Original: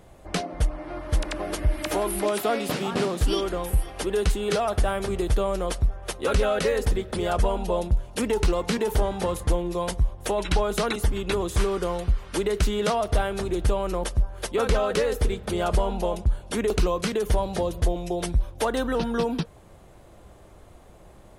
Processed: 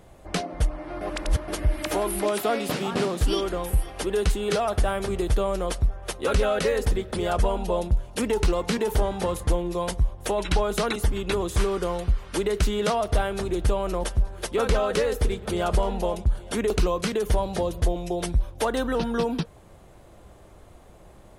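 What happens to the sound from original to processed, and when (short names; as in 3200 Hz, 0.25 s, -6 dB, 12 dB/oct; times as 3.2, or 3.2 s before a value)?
1.01–1.48 reverse
12.99–16.53 echo 0.876 s -21 dB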